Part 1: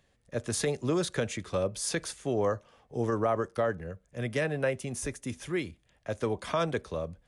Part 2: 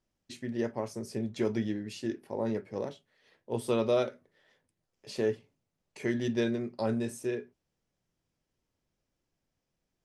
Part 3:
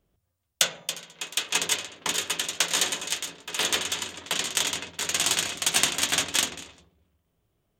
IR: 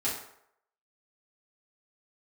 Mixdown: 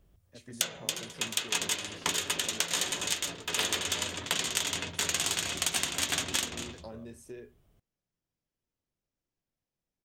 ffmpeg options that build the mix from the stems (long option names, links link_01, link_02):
-filter_complex "[0:a]acrossover=split=140[link_01][link_02];[link_02]acompressor=threshold=-33dB:ratio=2[link_03];[link_01][link_03]amix=inputs=2:normalize=0,volume=-19dB[link_04];[1:a]acompressor=threshold=-33dB:ratio=6,adelay=50,volume=-8dB[link_05];[2:a]lowshelf=frequency=110:gain=11,volume=2.5dB[link_06];[link_04][link_05][link_06]amix=inputs=3:normalize=0,acompressor=threshold=-26dB:ratio=10"